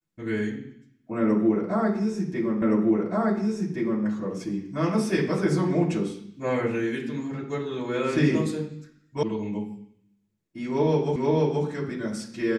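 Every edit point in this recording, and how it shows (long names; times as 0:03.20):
0:02.62: the same again, the last 1.42 s
0:09.23: cut off before it has died away
0:11.16: the same again, the last 0.48 s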